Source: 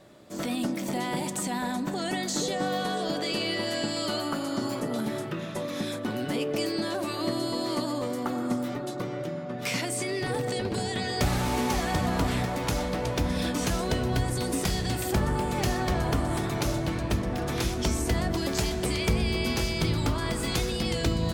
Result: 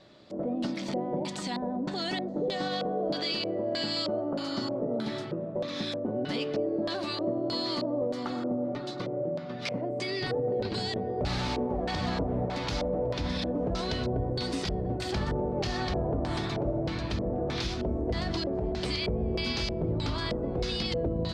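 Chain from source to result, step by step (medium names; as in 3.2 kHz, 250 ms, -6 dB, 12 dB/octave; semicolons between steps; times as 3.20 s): LFO low-pass square 1.6 Hz 560–4400 Hz; peak limiter -18 dBFS, peak gain reduction 6 dB; trim -3 dB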